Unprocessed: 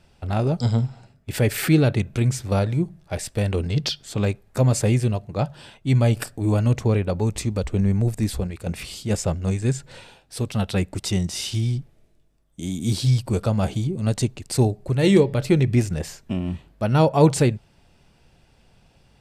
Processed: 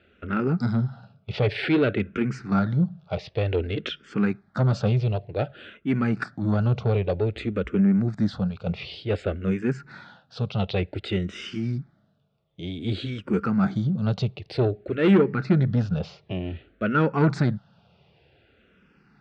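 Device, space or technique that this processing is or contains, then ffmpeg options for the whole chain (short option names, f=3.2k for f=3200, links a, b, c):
barber-pole phaser into a guitar amplifier: -filter_complex "[0:a]asettb=1/sr,asplit=3[a][b][c];[a]atrim=end=15.154[d];[b]atrim=start=15.15:end=16.01,asetpts=PTS-STARTPTS,afade=t=in:d=0.004:c=qsin,afade=t=out:st=0.856:d=0.004:c=qsin,lowpass=6.4k[e];[c]atrim=start=16.006[f];[d][e]acrossfade=d=0.004:c1=hsin:c2=qsin[g];[g][f]acrossfade=d=0.004:c1=qsin:c2=hsin,asplit=2[h][i];[i]afreqshift=-0.54[j];[h][j]amix=inputs=2:normalize=1,asoftclip=type=tanh:threshold=-17dB,highpass=100,equalizer=f=190:t=q:w=4:g=5,equalizer=f=430:t=q:w=4:g=3,equalizer=f=960:t=q:w=4:g=-5,equalizer=f=1.4k:t=q:w=4:g=9,lowpass=f=4k:w=0.5412,lowpass=f=4k:w=1.3066,volume=2dB"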